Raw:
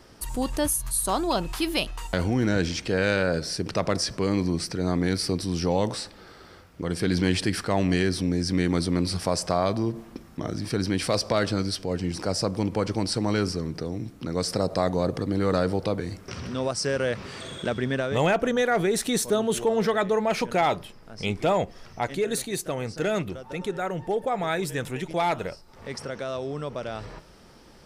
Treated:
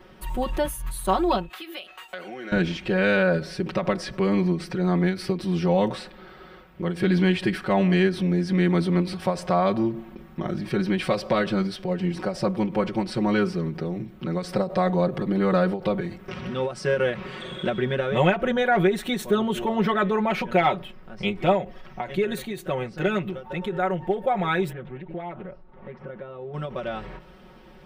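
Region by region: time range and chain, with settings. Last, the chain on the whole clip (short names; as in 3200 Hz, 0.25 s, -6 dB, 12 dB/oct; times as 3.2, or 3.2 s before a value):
1.49–2.52 HPF 550 Hz + bell 950 Hz -13 dB 0.26 oct + compressor 3:1, threshold -36 dBFS
24.72–26.54 compressor 2:1, threshold -37 dBFS + tape spacing loss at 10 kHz 39 dB + Doppler distortion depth 0.24 ms
whole clip: band shelf 7400 Hz -14.5 dB; comb 5.4 ms, depth 99%; ending taper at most 170 dB/s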